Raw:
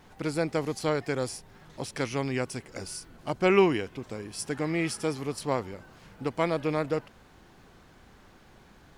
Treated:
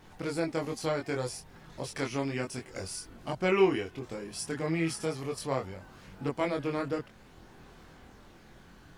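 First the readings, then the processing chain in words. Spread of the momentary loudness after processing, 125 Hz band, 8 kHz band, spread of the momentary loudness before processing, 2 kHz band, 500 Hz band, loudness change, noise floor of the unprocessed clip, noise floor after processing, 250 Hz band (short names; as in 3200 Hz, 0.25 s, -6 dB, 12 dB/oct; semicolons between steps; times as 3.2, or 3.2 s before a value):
13 LU, -2.5 dB, -1.5 dB, 14 LU, -3.0 dB, -3.0 dB, -3.0 dB, -56 dBFS, -55 dBFS, -2.5 dB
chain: in parallel at -2.5 dB: compressor, threshold -37 dBFS, peak gain reduction 19 dB; on the sum: chorus voices 2, 0.32 Hz, delay 23 ms, depth 1.9 ms; gain -1.5 dB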